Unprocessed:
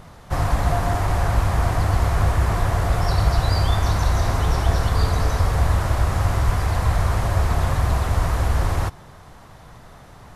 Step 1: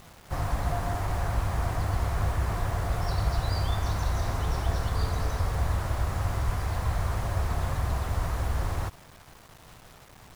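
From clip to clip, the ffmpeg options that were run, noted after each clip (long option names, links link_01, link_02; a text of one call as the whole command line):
ffmpeg -i in.wav -af "acrusher=bits=6:mix=0:aa=0.000001,volume=-8.5dB" out.wav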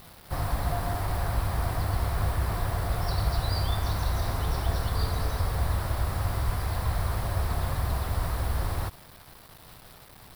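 ffmpeg -i in.wav -af "aexciter=amount=1.6:drive=1.3:freq=3700" out.wav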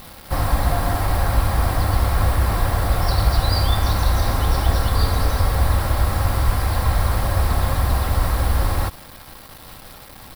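ffmpeg -i in.wav -af "aecho=1:1:3.7:0.31,volume=9dB" out.wav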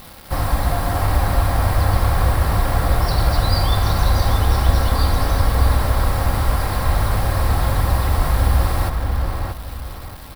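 ffmpeg -i in.wav -filter_complex "[0:a]asplit=2[link_01][link_02];[link_02]adelay=630,lowpass=frequency=2500:poles=1,volume=-3dB,asplit=2[link_03][link_04];[link_04]adelay=630,lowpass=frequency=2500:poles=1,volume=0.31,asplit=2[link_05][link_06];[link_06]adelay=630,lowpass=frequency=2500:poles=1,volume=0.31,asplit=2[link_07][link_08];[link_08]adelay=630,lowpass=frequency=2500:poles=1,volume=0.31[link_09];[link_01][link_03][link_05][link_07][link_09]amix=inputs=5:normalize=0" out.wav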